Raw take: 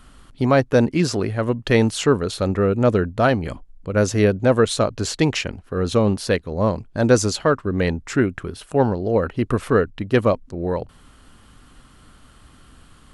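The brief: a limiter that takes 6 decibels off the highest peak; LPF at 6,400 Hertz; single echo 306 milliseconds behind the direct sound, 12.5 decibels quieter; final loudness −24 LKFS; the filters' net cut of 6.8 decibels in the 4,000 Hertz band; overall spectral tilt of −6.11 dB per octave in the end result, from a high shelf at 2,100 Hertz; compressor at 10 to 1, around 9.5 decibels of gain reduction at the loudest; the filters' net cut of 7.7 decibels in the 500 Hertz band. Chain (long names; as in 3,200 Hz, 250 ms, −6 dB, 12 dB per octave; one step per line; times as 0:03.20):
low-pass filter 6,400 Hz
parametric band 500 Hz −9 dB
high-shelf EQ 2,100 Hz −4.5 dB
parametric band 4,000 Hz −3.5 dB
downward compressor 10 to 1, threshold −24 dBFS
brickwall limiter −20.5 dBFS
single-tap delay 306 ms −12.5 dB
level +8.5 dB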